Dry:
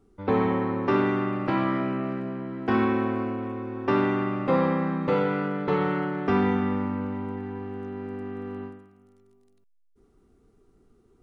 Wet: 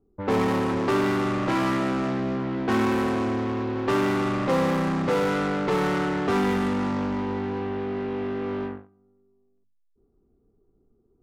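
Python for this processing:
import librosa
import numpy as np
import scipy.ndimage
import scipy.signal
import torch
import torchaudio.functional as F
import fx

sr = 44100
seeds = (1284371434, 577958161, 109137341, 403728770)

p1 = fx.hum_notches(x, sr, base_hz=50, count=6)
p2 = fx.fuzz(p1, sr, gain_db=38.0, gate_db=-47.0)
p3 = p1 + F.gain(torch.from_numpy(p2), -11.0).numpy()
p4 = fx.env_lowpass(p3, sr, base_hz=660.0, full_db=-16.0)
y = F.gain(torch.from_numpy(p4), -4.0).numpy()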